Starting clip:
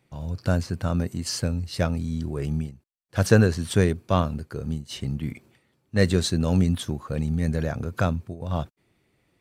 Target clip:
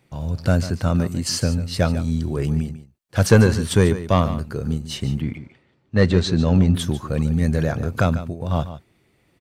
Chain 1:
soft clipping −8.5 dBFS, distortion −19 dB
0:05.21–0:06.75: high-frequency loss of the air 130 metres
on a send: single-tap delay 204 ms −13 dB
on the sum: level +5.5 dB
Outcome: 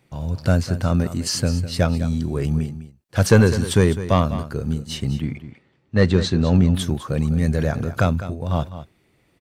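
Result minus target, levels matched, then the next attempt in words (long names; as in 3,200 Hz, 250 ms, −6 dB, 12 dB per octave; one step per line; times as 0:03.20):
echo 58 ms late
soft clipping −8.5 dBFS, distortion −19 dB
0:05.21–0:06.75: high-frequency loss of the air 130 metres
on a send: single-tap delay 146 ms −13 dB
on the sum: level +5.5 dB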